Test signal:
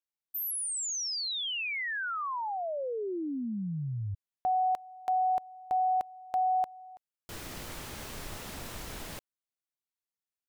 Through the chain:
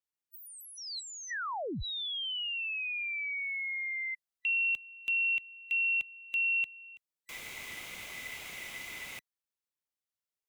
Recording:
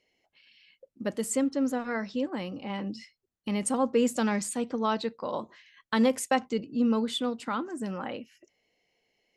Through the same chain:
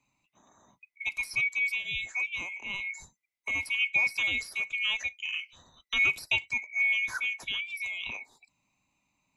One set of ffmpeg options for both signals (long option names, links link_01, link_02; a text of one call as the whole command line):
ffmpeg -i in.wav -filter_complex "[0:a]afftfilt=real='real(if(lt(b,920),b+92*(1-2*mod(floor(b/92),2)),b),0)':imag='imag(if(lt(b,920),b+92*(1-2*mod(floor(b/92),2)),b),0)':win_size=2048:overlap=0.75,acrossover=split=160|1000|4100[link_01][link_02][link_03][link_04];[link_04]acompressor=threshold=-48dB:ratio=10:attack=13:release=41:knee=1:detection=rms[link_05];[link_01][link_02][link_03][link_05]amix=inputs=4:normalize=0,adynamicequalizer=threshold=0.01:dfrequency=4300:dqfactor=0.7:tfrequency=4300:tqfactor=0.7:attack=5:release=100:ratio=0.333:range=1.5:mode=boostabove:tftype=highshelf,volume=-2dB" out.wav